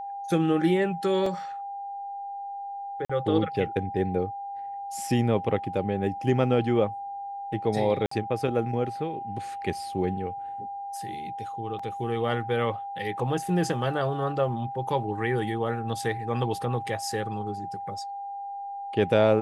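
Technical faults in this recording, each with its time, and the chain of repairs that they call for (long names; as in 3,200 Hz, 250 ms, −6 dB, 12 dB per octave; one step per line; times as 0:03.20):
whistle 800 Hz −33 dBFS
0:01.26: drop-out 3.5 ms
0:03.05–0:03.10: drop-out 45 ms
0:08.06–0:08.11: drop-out 54 ms
0:11.79: drop-out 4.6 ms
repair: notch filter 800 Hz, Q 30
repair the gap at 0:01.26, 3.5 ms
repair the gap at 0:03.05, 45 ms
repair the gap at 0:08.06, 54 ms
repair the gap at 0:11.79, 4.6 ms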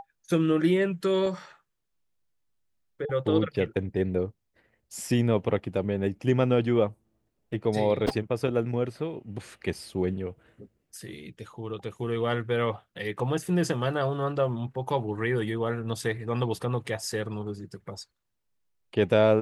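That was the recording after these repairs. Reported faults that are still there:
none of them is left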